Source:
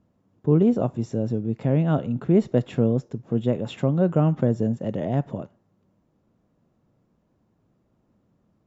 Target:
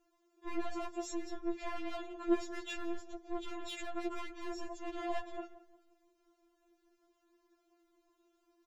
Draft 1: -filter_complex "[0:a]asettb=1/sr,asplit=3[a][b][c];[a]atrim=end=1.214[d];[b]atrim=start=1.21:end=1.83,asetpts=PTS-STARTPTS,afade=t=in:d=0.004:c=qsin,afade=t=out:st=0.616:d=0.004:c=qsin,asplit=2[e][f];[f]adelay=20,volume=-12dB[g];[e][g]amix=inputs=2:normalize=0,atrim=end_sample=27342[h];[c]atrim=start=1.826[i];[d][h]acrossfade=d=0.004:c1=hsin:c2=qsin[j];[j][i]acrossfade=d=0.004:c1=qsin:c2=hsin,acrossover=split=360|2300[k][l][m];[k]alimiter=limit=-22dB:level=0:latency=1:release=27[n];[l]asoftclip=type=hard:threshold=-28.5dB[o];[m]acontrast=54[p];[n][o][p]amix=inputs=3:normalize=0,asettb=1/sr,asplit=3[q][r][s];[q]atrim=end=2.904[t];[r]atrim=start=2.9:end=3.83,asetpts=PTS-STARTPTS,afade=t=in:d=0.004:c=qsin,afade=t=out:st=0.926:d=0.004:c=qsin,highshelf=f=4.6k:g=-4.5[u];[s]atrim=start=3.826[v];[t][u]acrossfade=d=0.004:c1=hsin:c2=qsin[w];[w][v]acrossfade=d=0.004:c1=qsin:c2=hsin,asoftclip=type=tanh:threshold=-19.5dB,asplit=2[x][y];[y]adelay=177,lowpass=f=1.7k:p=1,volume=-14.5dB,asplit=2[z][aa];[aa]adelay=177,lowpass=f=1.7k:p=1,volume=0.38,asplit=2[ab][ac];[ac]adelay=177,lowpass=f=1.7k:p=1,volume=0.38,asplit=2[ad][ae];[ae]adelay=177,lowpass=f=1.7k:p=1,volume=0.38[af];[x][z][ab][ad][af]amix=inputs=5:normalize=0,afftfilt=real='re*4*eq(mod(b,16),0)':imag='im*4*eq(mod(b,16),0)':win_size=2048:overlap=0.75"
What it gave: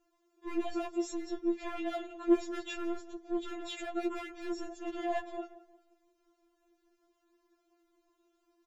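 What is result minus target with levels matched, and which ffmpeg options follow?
soft clip: distortion -11 dB
-filter_complex "[0:a]asettb=1/sr,asplit=3[a][b][c];[a]atrim=end=1.214[d];[b]atrim=start=1.21:end=1.83,asetpts=PTS-STARTPTS,afade=t=in:d=0.004:c=qsin,afade=t=out:st=0.616:d=0.004:c=qsin,asplit=2[e][f];[f]adelay=20,volume=-12dB[g];[e][g]amix=inputs=2:normalize=0,atrim=end_sample=27342[h];[c]atrim=start=1.826[i];[d][h]acrossfade=d=0.004:c1=hsin:c2=qsin[j];[j][i]acrossfade=d=0.004:c1=qsin:c2=hsin,acrossover=split=360|2300[k][l][m];[k]alimiter=limit=-22dB:level=0:latency=1:release=27[n];[l]asoftclip=type=hard:threshold=-28.5dB[o];[m]acontrast=54[p];[n][o][p]amix=inputs=3:normalize=0,asettb=1/sr,asplit=3[q][r][s];[q]atrim=end=2.904[t];[r]atrim=start=2.9:end=3.83,asetpts=PTS-STARTPTS,afade=t=in:d=0.004:c=qsin,afade=t=out:st=0.926:d=0.004:c=qsin,highshelf=f=4.6k:g=-4.5[u];[s]atrim=start=3.826[v];[t][u]acrossfade=d=0.004:c1=hsin:c2=qsin[w];[w][v]acrossfade=d=0.004:c1=qsin:c2=hsin,asoftclip=type=tanh:threshold=-29dB,asplit=2[x][y];[y]adelay=177,lowpass=f=1.7k:p=1,volume=-14.5dB,asplit=2[z][aa];[aa]adelay=177,lowpass=f=1.7k:p=1,volume=0.38,asplit=2[ab][ac];[ac]adelay=177,lowpass=f=1.7k:p=1,volume=0.38,asplit=2[ad][ae];[ae]adelay=177,lowpass=f=1.7k:p=1,volume=0.38[af];[x][z][ab][ad][af]amix=inputs=5:normalize=0,afftfilt=real='re*4*eq(mod(b,16),0)':imag='im*4*eq(mod(b,16),0)':win_size=2048:overlap=0.75"

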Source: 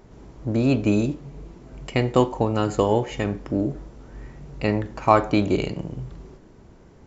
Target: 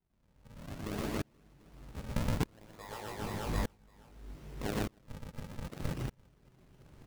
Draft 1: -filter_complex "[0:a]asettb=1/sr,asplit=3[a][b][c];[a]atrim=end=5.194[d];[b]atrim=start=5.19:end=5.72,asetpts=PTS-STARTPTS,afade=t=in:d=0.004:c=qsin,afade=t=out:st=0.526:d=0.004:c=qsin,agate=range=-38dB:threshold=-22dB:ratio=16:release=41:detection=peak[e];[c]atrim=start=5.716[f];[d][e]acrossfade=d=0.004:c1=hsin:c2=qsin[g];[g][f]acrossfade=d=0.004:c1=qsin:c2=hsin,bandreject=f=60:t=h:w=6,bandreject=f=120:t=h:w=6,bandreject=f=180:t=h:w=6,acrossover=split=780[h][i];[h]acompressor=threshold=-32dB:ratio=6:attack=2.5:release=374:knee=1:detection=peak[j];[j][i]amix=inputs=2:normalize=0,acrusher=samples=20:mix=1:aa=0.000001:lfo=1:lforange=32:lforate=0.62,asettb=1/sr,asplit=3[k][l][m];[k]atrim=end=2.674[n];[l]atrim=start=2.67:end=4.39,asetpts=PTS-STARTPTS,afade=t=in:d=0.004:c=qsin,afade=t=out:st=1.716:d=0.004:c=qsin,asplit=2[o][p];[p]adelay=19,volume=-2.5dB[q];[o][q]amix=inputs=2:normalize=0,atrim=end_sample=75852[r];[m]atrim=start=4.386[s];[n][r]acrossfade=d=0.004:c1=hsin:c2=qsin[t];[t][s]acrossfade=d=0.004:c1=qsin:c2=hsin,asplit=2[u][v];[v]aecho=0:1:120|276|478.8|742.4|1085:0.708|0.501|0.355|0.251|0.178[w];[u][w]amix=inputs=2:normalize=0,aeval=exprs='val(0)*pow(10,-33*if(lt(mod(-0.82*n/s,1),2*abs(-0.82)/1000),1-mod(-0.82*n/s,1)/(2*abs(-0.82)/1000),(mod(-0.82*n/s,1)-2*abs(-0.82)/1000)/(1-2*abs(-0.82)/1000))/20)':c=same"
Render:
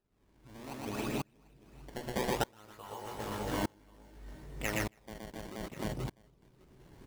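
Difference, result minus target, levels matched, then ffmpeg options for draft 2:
decimation with a swept rate: distortion -6 dB
-filter_complex "[0:a]asettb=1/sr,asplit=3[a][b][c];[a]atrim=end=5.194[d];[b]atrim=start=5.19:end=5.72,asetpts=PTS-STARTPTS,afade=t=in:d=0.004:c=qsin,afade=t=out:st=0.526:d=0.004:c=qsin,agate=range=-38dB:threshold=-22dB:ratio=16:release=41:detection=peak[e];[c]atrim=start=5.716[f];[d][e]acrossfade=d=0.004:c1=hsin:c2=qsin[g];[g][f]acrossfade=d=0.004:c1=qsin:c2=hsin,bandreject=f=60:t=h:w=6,bandreject=f=120:t=h:w=6,bandreject=f=180:t=h:w=6,acrossover=split=780[h][i];[h]acompressor=threshold=-32dB:ratio=6:attack=2.5:release=374:knee=1:detection=peak[j];[j][i]amix=inputs=2:normalize=0,acrusher=samples=72:mix=1:aa=0.000001:lfo=1:lforange=115:lforate=0.62,asettb=1/sr,asplit=3[k][l][m];[k]atrim=end=2.674[n];[l]atrim=start=2.67:end=4.39,asetpts=PTS-STARTPTS,afade=t=in:d=0.004:c=qsin,afade=t=out:st=1.716:d=0.004:c=qsin,asplit=2[o][p];[p]adelay=19,volume=-2.5dB[q];[o][q]amix=inputs=2:normalize=0,atrim=end_sample=75852[r];[m]atrim=start=4.386[s];[n][r]acrossfade=d=0.004:c1=hsin:c2=qsin[t];[t][s]acrossfade=d=0.004:c1=qsin:c2=hsin,asplit=2[u][v];[v]aecho=0:1:120|276|478.8|742.4|1085:0.708|0.501|0.355|0.251|0.178[w];[u][w]amix=inputs=2:normalize=0,aeval=exprs='val(0)*pow(10,-33*if(lt(mod(-0.82*n/s,1),2*abs(-0.82)/1000),1-mod(-0.82*n/s,1)/(2*abs(-0.82)/1000),(mod(-0.82*n/s,1)-2*abs(-0.82)/1000)/(1-2*abs(-0.82)/1000))/20)':c=same"

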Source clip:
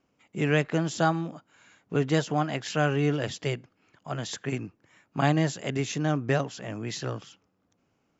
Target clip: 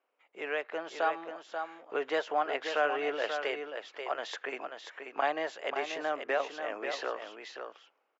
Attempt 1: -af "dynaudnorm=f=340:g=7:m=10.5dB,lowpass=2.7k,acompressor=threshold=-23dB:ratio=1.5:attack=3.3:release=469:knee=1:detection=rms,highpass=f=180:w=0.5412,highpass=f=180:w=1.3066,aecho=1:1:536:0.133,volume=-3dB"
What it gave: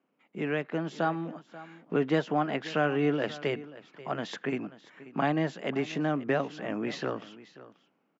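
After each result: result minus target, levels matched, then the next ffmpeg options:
250 Hz band +11.5 dB; echo-to-direct -10.5 dB
-af "dynaudnorm=f=340:g=7:m=10.5dB,lowpass=2.7k,acompressor=threshold=-23dB:ratio=1.5:attack=3.3:release=469:knee=1:detection=rms,highpass=f=470:w=0.5412,highpass=f=470:w=1.3066,aecho=1:1:536:0.133,volume=-3dB"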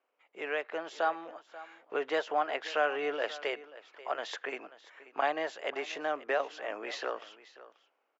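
echo-to-direct -10.5 dB
-af "dynaudnorm=f=340:g=7:m=10.5dB,lowpass=2.7k,acompressor=threshold=-23dB:ratio=1.5:attack=3.3:release=469:knee=1:detection=rms,highpass=f=470:w=0.5412,highpass=f=470:w=1.3066,aecho=1:1:536:0.447,volume=-3dB"

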